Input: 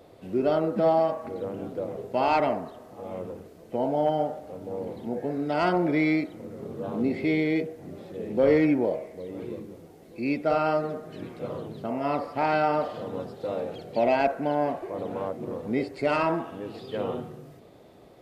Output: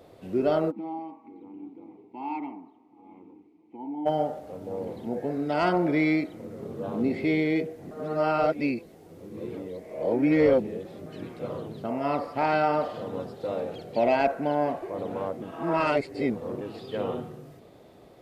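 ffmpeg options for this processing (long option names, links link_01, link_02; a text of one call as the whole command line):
ffmpeg -i in.wav -filter_complex "[0:a]asplit=3[link_01][link_02][link_03];[link_01]afade=type=out:start_time=0.7:duration=0.02[link_04];[link_02]asplit=3[link_05][link_06][link_07];[link_05]bandpass=frequency=300:width_type=q:width=8,volume=0dB[link_08];[link_06]bandpass=frequency=870:width_type=q:width=8,volume=-6dB[link_09];[link_07]bandpass=frequency=2240:width_type=q:width=8,volume=-9dB[link_10];[link_08][link_09][link_10]amix=inputs=3:normalize=0,afade=type=in:start_time=0.7:duration=0.02,afade=type=out:start_time=4.05:duration=0.02[link_11];[link_03]afade=type=in:start_time=4.05:duration=0.02[link_12];[link_04][link_11][link_12]amix=inputs=3:normalize=0,asplit=5[link_13][link_14][link_15][link_16][link_17];[link_13]atrim=end=7.912[link_18];[link_14]atrim=start=7.908:end=11.062,asetpts=PTS-STARTPTS,areverse[link_19];[link_15]atrim=start=11.058:end=15.422[link_20];[link_16]atrim=start=15.418:end=16.612,asetpts=PTS-STARTPTS,areverse[link_21];[link_17]atrim=start=16.608[link_22];[link_18][link_19]acrossfade=duration=0.004:curve1=hsin:curve2=hsin[link_23];[link_23][link_20]acrossfade=duration=0.004:curve1=hsin:curve2=hsin[link_24];[link_24][link_21]acrossfade=duration=0.004:curve1=hsin:curve2=hsin[link_25];[link_25][link_22]acrossfade=duration=0.004:curve1=hsin:curve2=hsin" out.wav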